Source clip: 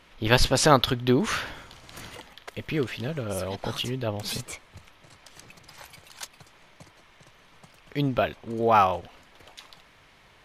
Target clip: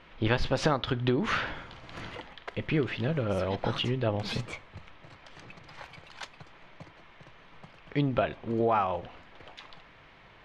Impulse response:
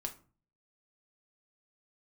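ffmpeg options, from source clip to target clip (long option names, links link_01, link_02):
-filter_complex "[0:a]lowpass=3100,acompressor=threshold=-24dB:ratio=10,asplit=2[link_01][link_02];[1:a]atrim=start_sample=2205,asetrate=35721,aresample=44100[link_03];[link_02][link_03]afir=irnorm=-1:irlink=0,volume=-10dB[link_04];[link_01][link_04]amix=inputs=2:normalize=0"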